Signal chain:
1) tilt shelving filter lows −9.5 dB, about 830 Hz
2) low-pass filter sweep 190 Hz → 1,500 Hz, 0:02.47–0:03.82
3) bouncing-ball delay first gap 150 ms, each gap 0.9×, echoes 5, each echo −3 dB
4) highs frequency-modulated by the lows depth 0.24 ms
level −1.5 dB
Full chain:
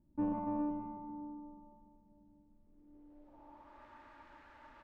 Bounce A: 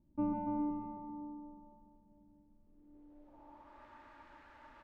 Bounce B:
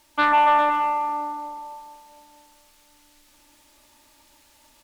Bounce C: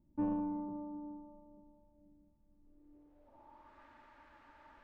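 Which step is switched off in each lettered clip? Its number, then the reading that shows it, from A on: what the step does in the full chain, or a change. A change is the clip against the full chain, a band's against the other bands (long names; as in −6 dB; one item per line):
4, 500 Hz band −1.5 dB
2, 250 Hz band −25.0 dB
3, change in momentary loudness spread −2 LU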